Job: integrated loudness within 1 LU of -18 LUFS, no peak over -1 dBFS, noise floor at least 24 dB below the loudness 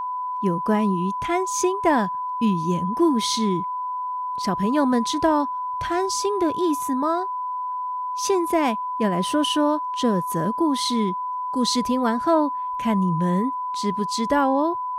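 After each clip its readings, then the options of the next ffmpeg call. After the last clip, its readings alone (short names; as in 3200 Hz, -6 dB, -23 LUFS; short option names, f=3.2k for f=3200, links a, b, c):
steady tone 1000 Hz; tone level -25 dBFS; loudness -22.5 LUFS; peak -7.5 dBFS; loudness target -18.0 LUFS
-> -af "bandreject=f=1k:w=30"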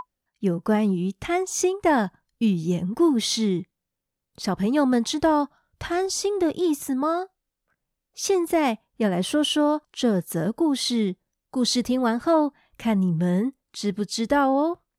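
steady tone none; loudness -24.0 LUFS; peak -8.5 dBFS; loudness target -18.0 LUFS
-> -af "volume=6dB"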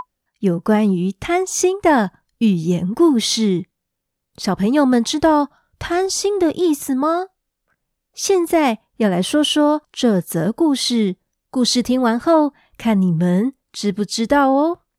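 loudness -18.0 LUFS; peak -2.5 dBFS; noise floor -78 dBFS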